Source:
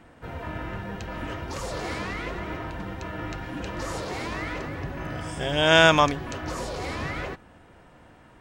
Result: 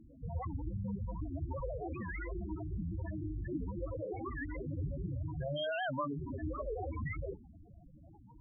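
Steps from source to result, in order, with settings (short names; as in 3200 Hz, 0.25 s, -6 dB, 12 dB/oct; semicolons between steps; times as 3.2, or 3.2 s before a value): soft clip -17.5 dBFS, distortion -7 dB; 5.08–5.88 thirty-one-band EQ 125 Hz +3 dB, 200 Hz -11 dB, 400 Hz -3 dB, 2500 Hz +7 dB, 6300 Hz +11 dB; compressor 10:1, threshold -32 dBFS, peak gain reduction 14 dB; loudest bins only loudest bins 4; notches 60/120/180/240/300/360 Hz; record warp 78 rpm, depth 250 cents; gain +3.5 dB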